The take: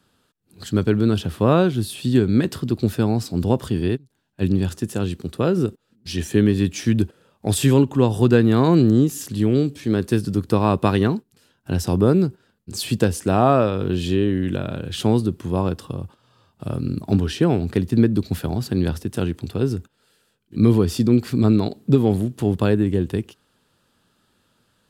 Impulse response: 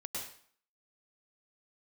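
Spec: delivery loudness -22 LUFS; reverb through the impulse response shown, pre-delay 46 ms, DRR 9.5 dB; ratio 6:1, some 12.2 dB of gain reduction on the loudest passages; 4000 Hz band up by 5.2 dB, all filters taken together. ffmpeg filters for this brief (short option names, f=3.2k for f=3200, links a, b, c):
-filter_complex "[0:a]equalizer=f=4k:t=o:g=6.5,acompressor=threshold=-24dB:ratio=6,asplit=2[a][b];[1:a]atrim=start_sample=2205,adelay=46[c];[b][c]afir=irnorm=-1:irlink=0,volume=-10dB[d];[a][d]amix=inputs=2:normalize=0,volume=7dB"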